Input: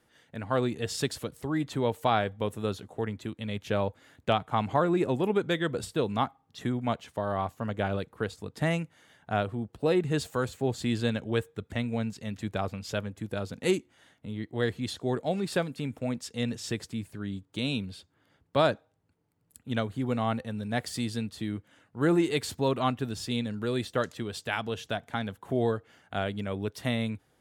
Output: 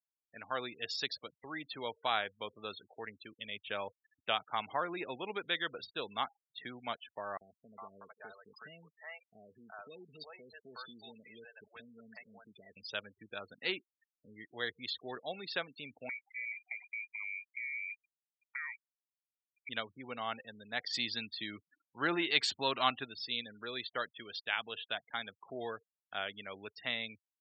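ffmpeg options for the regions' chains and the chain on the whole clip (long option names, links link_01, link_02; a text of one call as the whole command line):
ffmpeg -i in.wav -filter_complex "[0:a]asettb=1/sr,asplit=3[link_01][link_02][link_03];[link_01]atrim=end=7.374[link_04];[link_02]atrim=start=7.37:end=12.77,asetpts=PTS-STARTPTS,afade=type=in:duration=0.004:curve=qsin,afade=type=out:start_time=5.396:duration=0.004:curve=qsin,aecho=1:1:4.6:0.37,atrim=end_sample=238140,acompressor=threshold=-40dB:ratio=2:attack=3.2:release=140:knee=1:detection=peak,acrossover=split=540|2800[link_05][link_06][link_07];[link_05]adelay=40[link_08];[link_06]adelay=410[link_09];[link_08][link_09][link_07]amix=inputs=3:normalize=0,atrim=end_sample=238140[link_10];[link_03]atrim=start=12.766[link_11];[link_04][link_10]acrossfade=duration=0.004:curve1=hsin:curve2=qsin[link_12];[link_12][link_11]acrossfade=duration=0.004:curve1=qsin:curve2=hsin,asettb=1/sr,asplit=3[link_13][link_14][link_15];[link_13]atrim=end=16.094[link_16];[link_14]atrim=start=16.09:end=19.69,asetpts=PTS-STARTPTS,afade=type=in:duration=0.004:curve=qsin,afade=type=out:start_time=3.596:duration=0.004:curve=qsin,lowpass=frequency=2100:width_type=q:width=0.5098,lowpass=frequency=2100:width_type=q:width=0.6013,lowpass=frequency=2100:width_type=q:width=0.9,lowpass=frequency=2100:width_type=q:width=2.563,afreqshift=-2500,acompressor=threshold=-37dB:ratio=6:attack=3.2:release=140:knee=1:detection=peak[link_17];[link_15]atrim=start=19.686[link_18];[link_16][link_17]acrossfade=duration=0.004:curve1=hsin:curve2=qsin[link_19];[link_19][link_18]acrossfade=duration=0.004:curve1=qsin:curve2=hsin,asettb=1/sr,asplit=3[link_20][link_21][link_22];[link_20]atrim=end=20.894[link_23];[link_21]atrim=start=20.89:end=23.05,asetpts=PTS-STARTPTS,afade=type=in:duration=0.004:curve=qsin,afade=type=out:start_time=2.156:duration=0.004:curve=qsin,equalizer=frequency=470:width=6.9:gain=-6.5,acontrast=34[link_24];[link_22]atrim=start=23.046[link_25];[link_23][link_24]acrossfade=duration=0.004:curve1=hsin:curve2=qsin[link_26];[link_26][link_25]acrossfade=duration=0.004:curve1=qsin:curve2=hsin,lowpass=3500,afftfilt=real='re*gte(hypot(re,im),0.00891)':imag='im*gte(hypot(re,im),0.00891)':win_size=1024:overlap=0.75,aderivative,volume=10dB" out.wav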